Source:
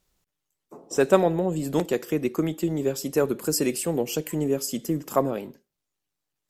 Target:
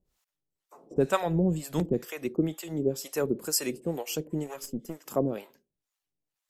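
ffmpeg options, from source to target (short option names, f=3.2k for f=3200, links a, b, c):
-filter_complex "[0:a]asplit=3[a][b][c];[a]afade=t=out:st=0.96:d=0.02[d];[b]asubboost=boost=5:cutoff=230,afade=t=in:st=0.96:d=0.02,afade=t=out:st=2.04:d=0.02[e];[c]afade=t=in:st=2.04:d=0.02[f];[d][e][f]amix=inputs=3:normalize=0,asettb=1/sr,asplit=3[g][h][i];[g]atrim=end=4.464[j];[h]atrim=start=4.46:end=5.06,asetpts=PTS-STARTPTS,afade=t=in:d=0.004:c=qsin,afade=t=out:st=0.596:d=0.004:c=qsin,aeval=exprs='(tanh(7.08*val(0)+0.7)-tanh(0.7))/7.08':c=same[k];[i]atrim=start=5.056[l];[j][k]acrossfade=d=0.004:c1=hsin:c2=qsin[m];[m][l]acrossfade=d=0.004:c1=qsin:c2=hsin,acrossover=split=620[n][o];[n]aeval=exprs='val(0)*(1-1/2+1/2*cos(2*PI*2.1*n/s))':c=same[p];[o]aeval=exprs='val(0)*(1-1/2-1/2*cos(2*PI*2.1*n/s))':c=same[q];[p][q]amix=inputs=2:normalize=0"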